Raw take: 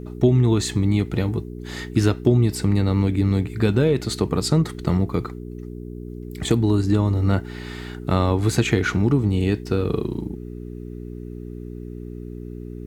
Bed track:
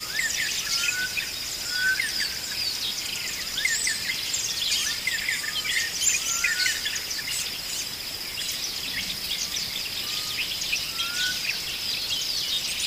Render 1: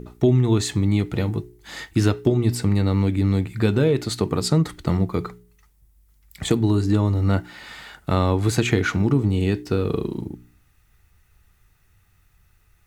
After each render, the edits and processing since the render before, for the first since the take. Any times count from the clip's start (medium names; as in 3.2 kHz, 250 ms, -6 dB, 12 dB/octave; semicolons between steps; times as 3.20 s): de-hum 60 Hz, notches 7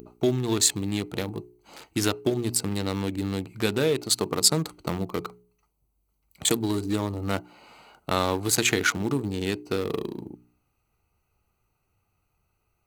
local Wiener filter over 25 samples; RIAA curve recording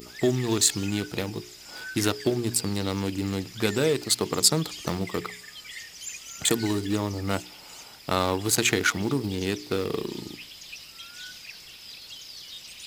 add bed track -15 dB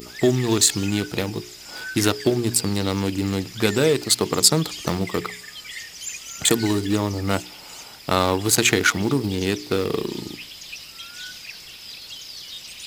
trim +5 dB; peak limiter -1 dBFS, peak gain reduction 2.5 dB